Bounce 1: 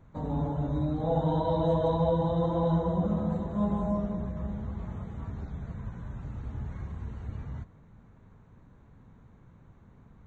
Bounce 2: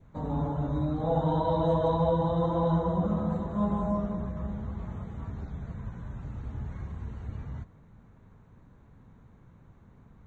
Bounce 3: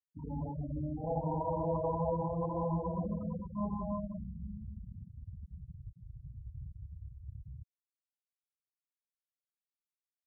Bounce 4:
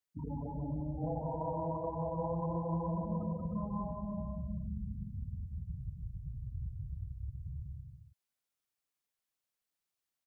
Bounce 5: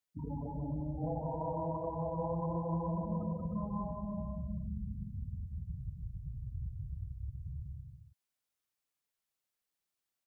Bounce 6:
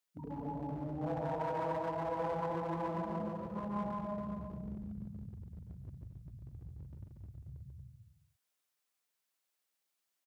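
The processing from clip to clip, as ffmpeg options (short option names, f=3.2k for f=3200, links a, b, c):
-af "adynamicequalizer=threshold=0.00355:dfrequency=1200:dqfactor=2.1:tfrequency=1200:tqfactor=2.1:attack=5:release=100:ratio=0.375:range=2.5:mode=boostabove:tftype=bell"
-af "acrusher=bits=5:mode=log:mix=0:aa=0.000001,highshelf=f=2.4k:t=q:w=3:g=-11,afftfilt=real='re*gte(hypot(re,im),0.0891)':imag='im*gte(hypot(re,im),0.0891)':win_size=1024:overlap=0.75,volume=-8dB"
-af "acompressor=threshold=-40dB:ratio=6,aecho=1:1:180|306|394.2|455.9|499.2:0.631|0.398|0.251|0.158|0.1,volume=4dB"
-af "bandreject=f=240.7:t=h:w=4,bandreject=f=481.4:t=h:w=4,bandreject=f=722.1:t=h:w=4,bandreject=f=962.8:t=h:w=4,bandreject=f=1.2035k:t=h:w=4,bandreject=f=1.4442k:t=h:w=4,bandreject=f=1.6849k:t=h:w=4,bandreject=f=1.9256k:t=h:w=4,bandreject=f=2.1663k:t=h:w=4,bandreject=f=2.407k:t=h:w=4,bandreject=f=2.6477k:t=h:w=4,bandreject=f=2.8884k:t=h:w=4,bandreject=f=3.1291k:t=h:w=4,bandreject=f=3.3698k:t=h:w=4,bandreject=f=3.6105k:t=h:w=4,bandreject=f=3.8512k:t=h:w=4,bandreject=f=4.0919k:t=h:w=4,bandreject=f=4.3326k:t=h:w=4,bandreject=f=4.5733k:t=h:w=4,bandreject=f=4.814k:t=h:w=4,bandreject=f=5.0547k:t=h:w=4,bandreject=f=5.2954k:t=h:w=4,bandreject=f=5.5361k:t=h:w=4,bandreject=f=5.7768k:t=h:w=4,bandreject=f=6.0175k:t=h:w=4,bandreject=f=6.2582k:t=h:w=4,bandreject=f=6.4989k:t=h:w=4,bandreject=f=6.7396k:t=h:w=4,bandreject=f=6.9803k:t=h:w=4,bandreject=f=7.221k:t=h:w=4"
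-af "aeval=exprs='clip(val(0),-1,0.0158)':c=same,highpass=f=320:p=1,aecho=1:1:141|233:0.596|0.335,volume=2.5dB"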